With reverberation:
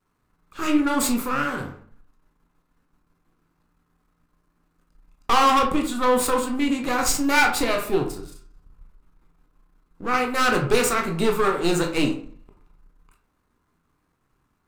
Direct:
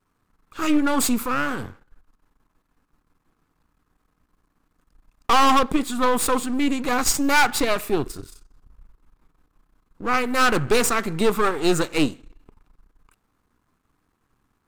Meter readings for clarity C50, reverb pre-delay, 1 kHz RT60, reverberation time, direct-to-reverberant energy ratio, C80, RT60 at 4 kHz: 8.5 dB, 16 ms, 0.50 s, 0.50 s, 2.0 dB, 13.0 dB, 0.30 s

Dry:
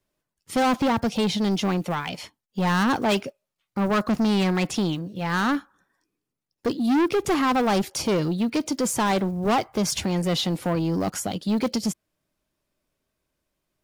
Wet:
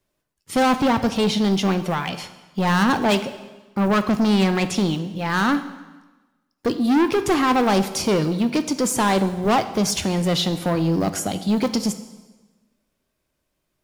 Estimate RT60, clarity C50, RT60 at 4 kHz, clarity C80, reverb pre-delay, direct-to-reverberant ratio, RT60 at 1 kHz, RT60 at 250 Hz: 1.2 s, 12.5 dB, 1.1 s, 14.0 dB, 13 ms, 10.0 dB, 1.2 s, 1.2 s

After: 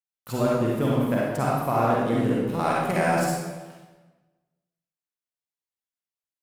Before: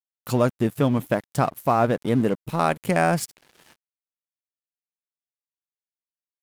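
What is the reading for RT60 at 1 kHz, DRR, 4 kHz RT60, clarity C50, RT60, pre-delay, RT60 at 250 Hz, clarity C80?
1.2 s, −5.5 dB, 0.95 s, −3.0 dB, 1.3 s, 39 ms, 1.3 s, 1.0 dB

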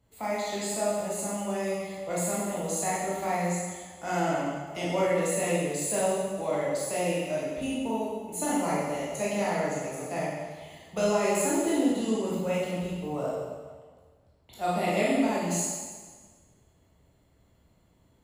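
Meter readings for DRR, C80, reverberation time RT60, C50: −7.5 dB, 1.5 dB, 1.5 s, −1.5 dB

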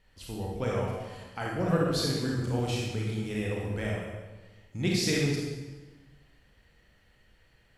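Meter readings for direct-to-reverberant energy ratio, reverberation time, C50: −3.5 dB, 1.2 s, −1.0 dB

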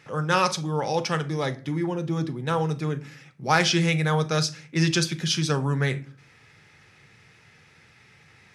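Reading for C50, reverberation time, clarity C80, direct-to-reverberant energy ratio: 17.0 dB, 0.40 s, 22.0 dB, 10.5 dB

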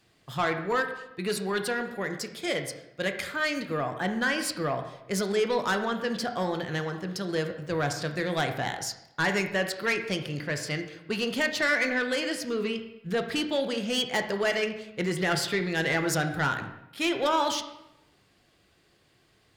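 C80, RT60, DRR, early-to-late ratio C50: 10.5 dB, 0.90 s, 6.0 dB, 8.5 dB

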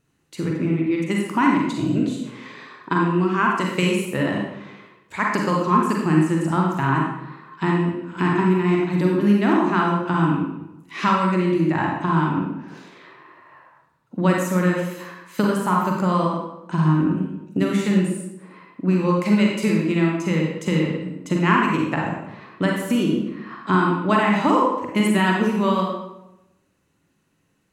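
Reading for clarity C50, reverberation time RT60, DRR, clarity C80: 0.5 dB, 0.90 s, −1.5 dB, 4.0 dB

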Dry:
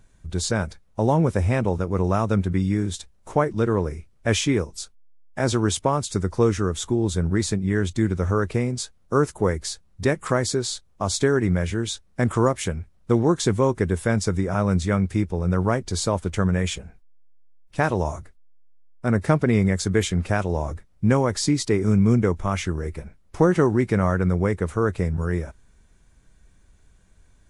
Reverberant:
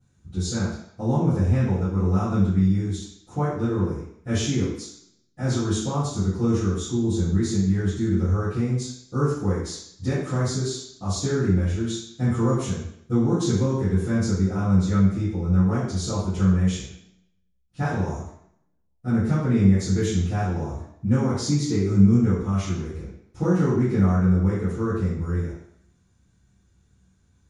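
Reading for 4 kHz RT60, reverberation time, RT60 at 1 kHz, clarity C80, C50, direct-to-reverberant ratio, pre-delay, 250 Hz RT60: 0.70 s, 0.65 s, 0.70 s, 4.5 dB, 0.5 dB, −17.0 dB, 3 ms, 0.70 s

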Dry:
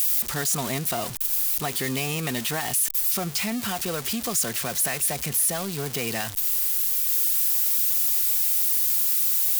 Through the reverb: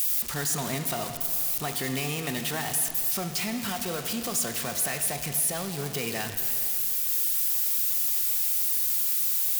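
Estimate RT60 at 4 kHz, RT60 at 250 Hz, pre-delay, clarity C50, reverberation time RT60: 2.0 s, 2.5 s, 16 ms, 7.0 dB, 2.4 s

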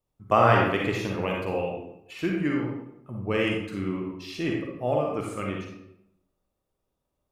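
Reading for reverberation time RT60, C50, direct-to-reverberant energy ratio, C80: 0.80 s, 0.5 dB, −1.5 dB, 4.5 dB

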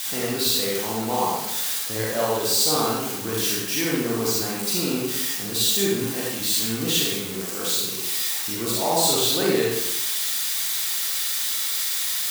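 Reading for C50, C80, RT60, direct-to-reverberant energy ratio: −2.0 dB, 2.0 dB, 0.90 s, −5.5 dB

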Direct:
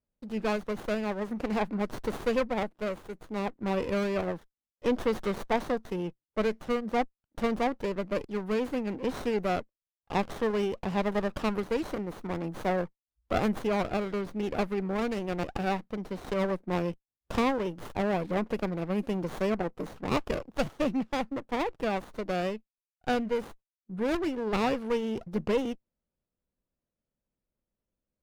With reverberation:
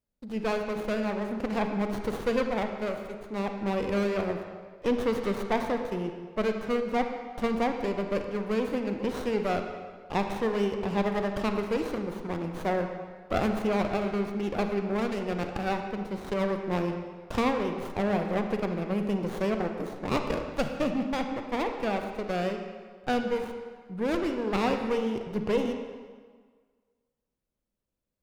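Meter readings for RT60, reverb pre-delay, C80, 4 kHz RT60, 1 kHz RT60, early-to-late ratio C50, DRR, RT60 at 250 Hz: 1.6 s, 35 ms, 7.0 dB, 1.3 s, 1.6 s, 6.0 dB, 5.0 dB, 1.5 s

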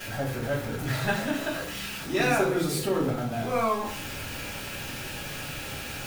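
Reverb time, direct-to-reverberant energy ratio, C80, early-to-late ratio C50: 0.50 s, −10.5 dB, 10.5 dB, 6.5 dB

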